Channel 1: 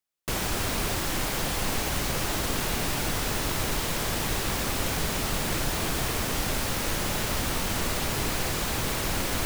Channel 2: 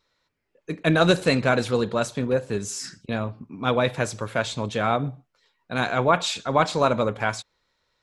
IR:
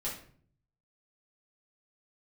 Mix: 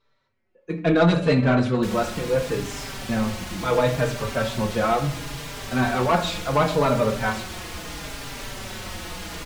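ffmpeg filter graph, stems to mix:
-filter_complex "[0:a]highshelf=f=2300:g=11.5,adelay=1550,volume=0.668[s0];[1:a]volume=1.33,asplit=2[s1][s2];[s2]volume=0.596[s3];[2:a]atrim=start_sample=2205[s4];[s3][s4]afir=irnorm=-1:irlink=0[s5];[s0][s1][s5]amix=inputs=3:normalize=0,aemphasis=mode=reproduction:type=75kf,asoftclip=type=tanh:threshold=0.355,asplit=2[s6][s7];[s7]adelay=4.6,afreqshift=-0.72[s8];[s6][s8]amix=inputs=2:normalize=1"

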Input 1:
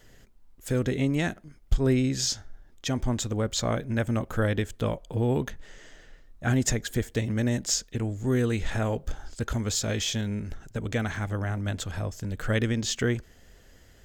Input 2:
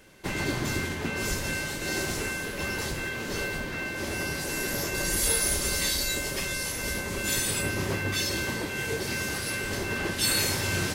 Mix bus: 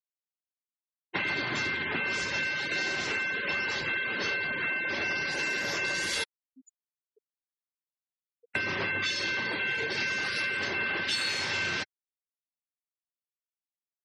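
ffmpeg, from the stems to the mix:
-filter_complex "[0:a]aemphasis=mode=production:type=bsi,acompressor=threshold=0.01:ratio=2,volume=0.237[s0];[1:a]equalizer=f=2500:w=0.3:g=13.5,adelay=900,volume=0.841,asplit=3[s1][s2][s3];[s1]atrim=end=6.24,asetpts=PTS-STARTPTS,afade=t=out:st=6.236:d=0.004:c=hsin[s4];[s2]atrim=start=6.24:end=8.55,asetpts=PTS-STARTPTS,volume=0[s5];[s3]atrim=start=8.55,asetpts=PTS-STARTPTS,afade=t=in:d=0.004:c=hsin[s6];[s4][s5][s6]concat=n=3:v=0:a=1[s7];[s0][s7]amix=inputs=2:normalize=0,afftfilt=real='re*gte(hypot(re,im),0.0447)':imag='im*gte(hypot(re,im),0.0447)':win_size=1024:overlap=0.75,highpass=110,lowpass=5600,acompressor=threshold=0.0398:ratio=6"

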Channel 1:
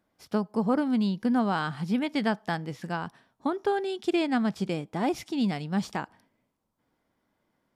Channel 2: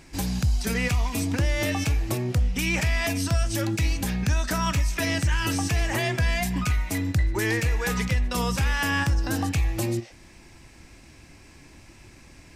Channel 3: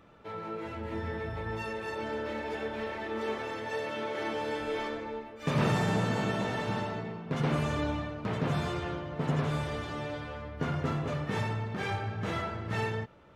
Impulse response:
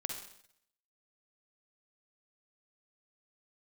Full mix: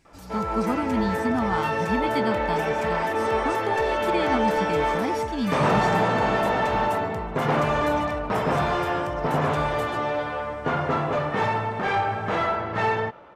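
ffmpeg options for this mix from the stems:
-filter_complex "[0:a]aecho=1:1:0.9:0.65,volume=0.376[s0];[1:a]alimiter=limit=0.0708:level=0:latency=1,volume=0.2[s1];[2:a]equalizer=f=810:w=1.1:g=5,asplit=2[s2][s3];[s3]highpass=f=720:p=1,volume=5.62,asoftclip=type=tanh:threshold=0.178[s4];[s2][s4]amix=inputs=2:normalize=0,lowpass=f=1500:p=1,volume=0.501,adelay=50,volume=0.841[s5];[s0][s1][s5]amix=inputs=3:normalize=0,dynaudnorm=f=130:g=5:m=1.88"

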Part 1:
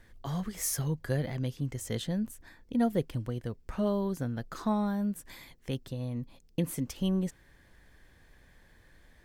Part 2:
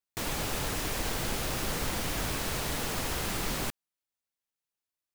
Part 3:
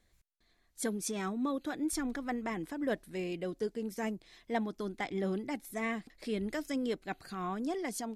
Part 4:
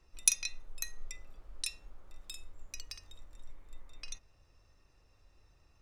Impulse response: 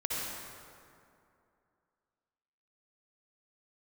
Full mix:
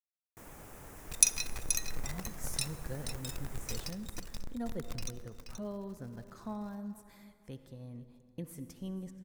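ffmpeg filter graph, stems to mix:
-filter_complex "[0:a]adelay=1800,volume=0.224,asplit=3[s0][s1][s2];[s1]volume=0.178[s3];[s2]volume=0.112[s4];[1:a]equalizer=f=4300:t=o:w=0.83:g=-11.5,adelay=200,volume=0.141,asplit=2[s5][s6];[s6]volume=0.335[s7];[3:a]bandreject=f=118.6:t=h:w=4,bandreject=f=237.2:t=h:w=4,bandreject=f=355.8:t=h:w=4,bandreject=f=474.4:t=h:w=4,bandreject=f=593:t=h:w=4,bandreject=f=711.6:t=h:w=4,bandreject=f=830.2:t=h:w=4,bandreject=f=948.8:t=h:w=4,bandreject=f=1067.4:t=h:w=4,bandreject=f=1186:t=h:w=4,bandreject=f=1304.6:t=h:w=4,bandreject=f=1423.2:t=h:w=4,bandreject=f=1541.8:t=h:w=4,bandreject=f=1660.4:t=h:w=4,bandreject=f=1779:t=h:w=4,bandreject=f=1897.6:t=h:w=4,bandreject=f=2016.2:t=h:w=4,bandreject=f=2134.8:t=h:w=4,bandreject=f=2253.4:t=h:w=4,bandreject=f=2372:t=h:w=4,bandreject=f=2490.6:t=h:w=4,bandreject=f=2609.2:t=h:w=4,bandreject=f=2727.8:t=h:w=4,bandreject=f=2846.4:t=h:w=4,bandreject=f=2965:t=h:w=4,bandreject=f=3083.6:t=h:w=4,bandreject=f=3202.2:t=h:w=4,bandreject=f=3320.8:t=h:w=4,bandreject=f=3439.4:t=h:w=4,bandreject=f=3558:t=h:w=4,bandreject=f=3676.6:t=h:w=4,bandreject=f=3795.2:t=h:w=4,bandreject=f=3913.8:t=h:w=4,acrusher=bits=8:dc=4:mix=0:aa=0.000001,adelay=950,volume=1.41,asplit=3[s8][s9][s10];[s9]volume=0.0631[s11];[s10]volume=0.376[s12];[4:a]atrim=start_sample=2205[s13];[s3][s11]amix=inputs=2:normalize=0[s14];[s14][s13]afir=irnorm=-1:irlink=0[s15];[s4][s7][s12]amix=inputs=3:normalize=0,aecho=0:1:479:1[s16];[s0][s5][s8][s15][s16]amix=inputs=5:normalize=0,equalizer=f=3000:w=1.7:g=-5.5"

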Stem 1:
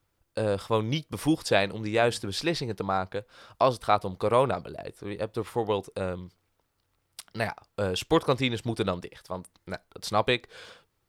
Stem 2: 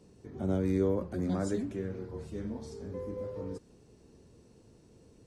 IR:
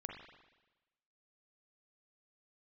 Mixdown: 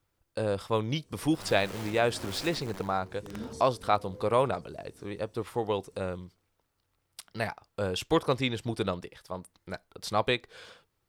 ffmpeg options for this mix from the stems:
-filter_complex "[0:a]volume=0.75,asplit=2[s0][s1];[1:a]aemphasis=mode=production:type=50kf,aeval=exprs='(mod(25.1*val(0)+1,2)-1)/25.1':c=same,adelay=900,volume=1,asplit=2[s2][s3];[s3]volume=0.2[s4];[s1]apad=whole_len=272080[s5];[s2][s5]sidechaincompress=threshold=0.00891:ratio=8:attack=16:release=261[s6];[s4]aecho=0:1:86|172|258|344|430|516|602:1|0.49|0.24|0.118|0.0576|0.0282|0.0138[s7];[s0][s6][s7]amix=inputs=3:normalize=0"

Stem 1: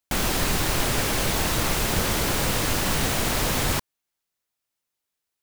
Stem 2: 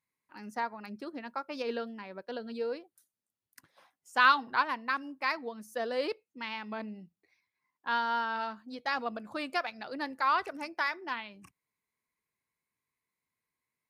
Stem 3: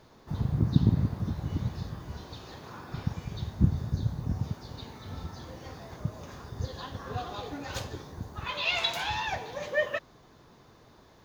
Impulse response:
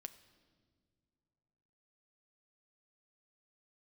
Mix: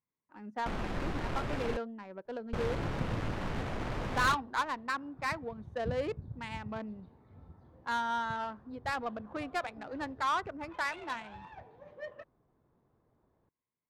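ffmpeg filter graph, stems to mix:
-filter_complex "[0:a]adelay=550,volume=0.316,asplit=3[s0][s1][s2];[s0]atrim=end=1.77,asetpts=PTS-STARTPTS,afade=t=out:st=1.766:d=0.004:c=hsin[s3];[s1]atrim=start=1.77:end=2.53,asetpts=PTS-STARTPTS,volume=0[s4];[s2]atrim=start=2.53,asetpts=PTS-STARTPTS,afade=t=in:d=0.004:c=hsin[s5];[s3][s4][s5]concat=n=3:v=0:a=1[s6];[1:a]asoftclip=type=tanh:threshold=0.0794,volume=0.944[s7];[2:a]adelay=2250,volume=0.188[s8];[s6][s7][s8]amix=inputs=3:normalize=0,adynamicsmooth=sensitivity=3.5:basefreq=1200"

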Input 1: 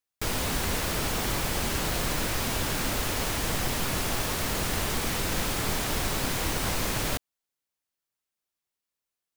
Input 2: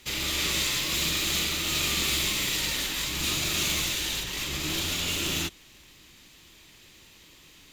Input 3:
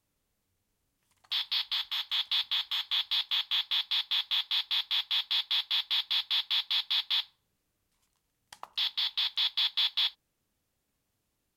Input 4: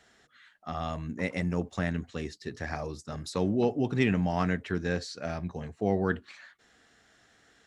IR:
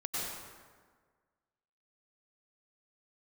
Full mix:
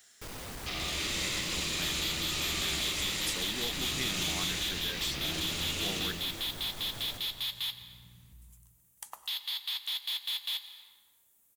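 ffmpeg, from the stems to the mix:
-filter_complex "[0:a]asoftclip=type=tanh:threshold=0.0398,volume=0.237,asplit=2[s0][s1];[s1]volume=0.501[s2];[1:a]aeval=exprs='val(0)+0.00447*(sin(2*PI*60*n/s)+sin(2*PI*2*60*n/s)/2+sin(2*PI*3*60*n/s)/3+sin(2*PI*4*60*n/s)/4+sin(2*PI*5*60*n/s)/5)':c=same,afwtdn=0.0126,adelay=600,volume=0.562,asplit=2[s3][s4];[s4]volume=0.596[s5];[2:a]aexciter=amount=5.4:drive=6:freq=6700,aeval=exprs='0.158*(cos(1*acos(clip(val(0)/0.158,-1,1)))-cos(1*PI/2))+0.0282*(cos(5*acos(clip(val(0)/0.158,-1,1)))-cos(5*PI/2))':c=same,lowshelf=f=210:g=-9,adelay=500,volume=0.501,asplit=2[s6][s7];[s7]volume=0.15[s8];[3:a]crystalizer=i=9:c=0,highshelf=f=8100:g=9.5,volume=0.251[s9];[4:a]atrim=start_sample=2205[s10];[s2][s5][s8]amix=inputs=3:normalize=0[s11];[s11][s10]afir=irnorm=-1:irlink=0[s12];[s0][s3][s6][s9][s12]amix=inputs=5:normalize=0,acompressor=threshold=0.0112:ratio=1.5"

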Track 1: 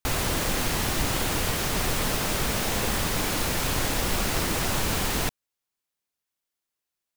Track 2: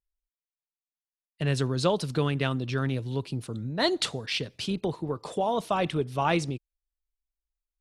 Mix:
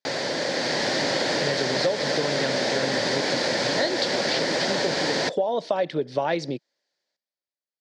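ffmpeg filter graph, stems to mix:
-filter_complex "[0:a]volume=1[s0];[1:a]volume=0.75[s1];[s0][s1]amix=inputs=2:normalize=0,dynaudnorm=f=130:g=13:m=3.76,highpass=f=170:w=0.5412,highpass=f=170:w=1.3066,equalizer=f=200:t=q:w=4:g=-6,equalizer=f=560:t=q:w=4:g=10,equalizer=f=1200:t=q:w=4:g=-10,equalizer=f=1800:t=q:w=4:g=6,equalizer=f=2700:t=q:w=4:g=-7,equalizer=f=4600:t=q:w=4:g=7,lowpass=f=5800:w=0.5412,lowpass=f=5800:w=1.3066,acompressor=threshold=0.0891:ratio=6"

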